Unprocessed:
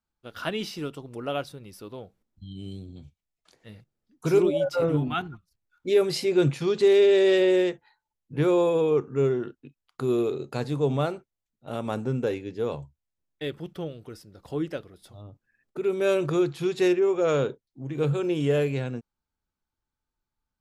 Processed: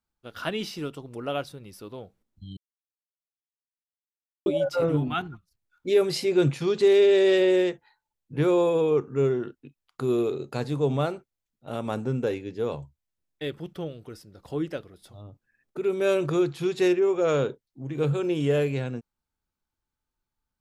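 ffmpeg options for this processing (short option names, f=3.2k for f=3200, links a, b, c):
-filter_complex "[0:a]asplit=3[a][b][c];[a]atrim=end=2.57,asetpts=PTS-STARTPTS,afade=t=out:st=2.566:d=0.004:c=hsin[d];[b]atrim=start=2.57:end=4.46,asetpts=PTS-STARTPTS,volume=0[e];[c]atrim=start=4.46,asetpts=PTS-STARTPTS,afade=t=in:d=0.004:c=hsin[f];[d][e][f]concat=n=3:v=0:a=1"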